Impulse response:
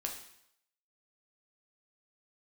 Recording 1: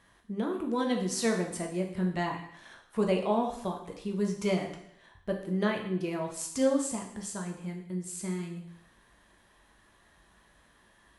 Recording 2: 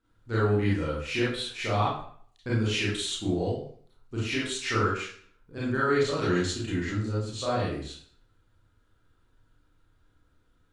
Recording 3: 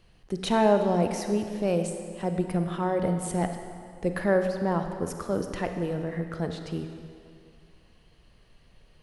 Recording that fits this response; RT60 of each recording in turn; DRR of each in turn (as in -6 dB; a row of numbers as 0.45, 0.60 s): 1; 0.75, 0.55, 2.3 s; 1.0, -8.5, 6.0 dB